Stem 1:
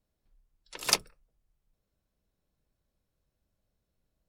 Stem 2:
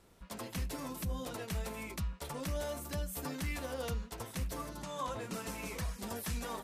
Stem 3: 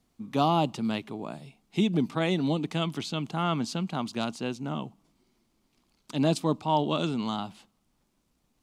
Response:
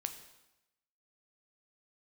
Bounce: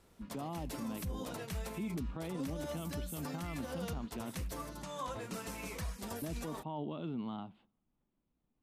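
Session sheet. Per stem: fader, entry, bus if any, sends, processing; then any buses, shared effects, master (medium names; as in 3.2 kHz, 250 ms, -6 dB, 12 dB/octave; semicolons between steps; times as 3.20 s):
mute
-1.5 dB, 0.00 s, no send, none
-8.5 dB, 0.00 s, muted 4.42–6.22 s, no send, FFT filter 300 Hz 0 dB, 3.4 kHz -9 dB, 5.7 kHz -28 dB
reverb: none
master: peak limiter -31.5 dBFS, peak gain reduction 10 dB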